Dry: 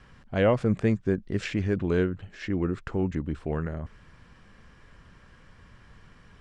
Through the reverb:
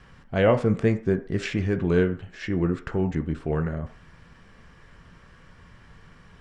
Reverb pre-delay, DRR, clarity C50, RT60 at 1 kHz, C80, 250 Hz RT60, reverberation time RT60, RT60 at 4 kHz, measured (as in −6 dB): 3 ms, 6.0 dB, 14.5 dB, 0.50 s, 18.5 dB, 0.35 s, 0.45 s, 0.45 s